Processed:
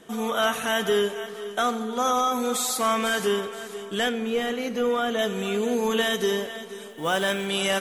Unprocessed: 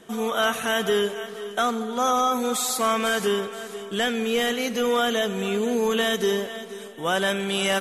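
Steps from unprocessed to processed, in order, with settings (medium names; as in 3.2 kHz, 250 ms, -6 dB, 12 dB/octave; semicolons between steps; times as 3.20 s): 4.09–5.19 s: treble shelf 2.3 kHz -9.5 dB; 6.89–7.47 s: companded quantiser 6-bit; FDN reverb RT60 0.6 s, high-frequency decay 0.9×, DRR 12.5 dB; trim -1 dB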